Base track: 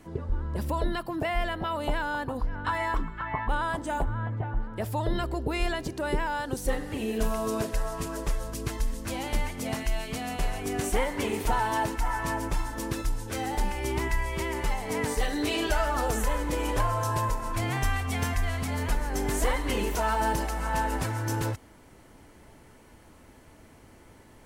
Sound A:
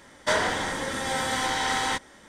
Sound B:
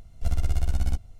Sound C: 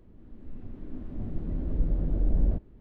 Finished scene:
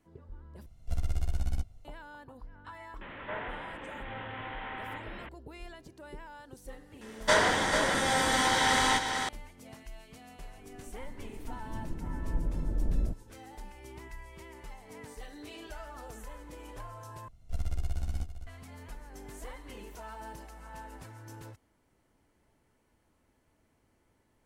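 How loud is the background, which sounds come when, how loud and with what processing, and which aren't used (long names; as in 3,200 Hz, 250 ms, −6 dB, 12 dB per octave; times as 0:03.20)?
base track −18 dB
0:00.66: overwrite with B −6.5 dB
0:03.01: mix in A −14 dB + linear delta modulator 16 kbit/s, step −25 dBFS
0:07.01: mix in A + single-tap delay 443 ms −6 dB
0:10.55: mix in C −5 dB
0:17.28: overwrite with B −8.5 dB + single-tap delay 454 ms −11.5 dB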